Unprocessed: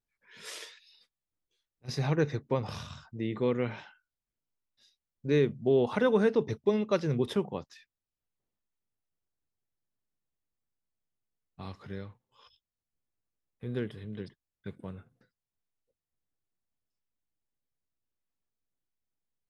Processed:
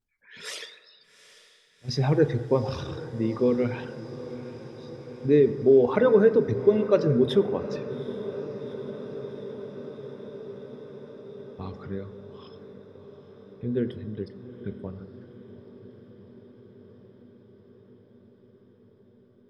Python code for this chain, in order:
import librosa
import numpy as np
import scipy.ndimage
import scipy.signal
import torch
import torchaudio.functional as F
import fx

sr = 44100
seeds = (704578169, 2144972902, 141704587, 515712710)

y = fx.envelope_sharpen(x, sr, power=1.5)
y = fx.dereverb_blind(y, sr, rt60_s=0.5)
y = fx.echo_diffused(y, sr, ms=808, feedback_pct=75, wet_db=-15.0)
y = fx.rev_fdn(y, sr, rt60_s=1.5, lf_ratio=1.0, hf_ratio=0.4, size_ms=74.0, drr_db=9.0)
y = y * 10.0 ** (6.5 / 20.0)